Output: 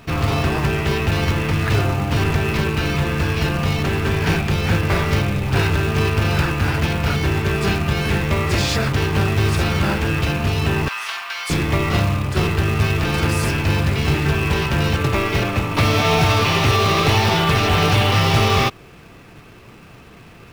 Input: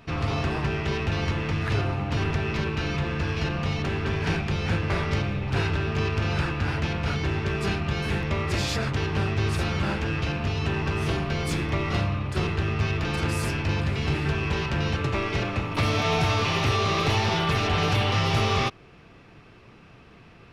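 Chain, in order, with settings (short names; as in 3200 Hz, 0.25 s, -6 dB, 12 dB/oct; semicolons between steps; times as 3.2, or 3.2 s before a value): 10.88–11.5 HPF 1000 Hz 24 dB/oct; in parallel at -4 dB: companded quantiser 4-bit; on the sum: gain +3 dB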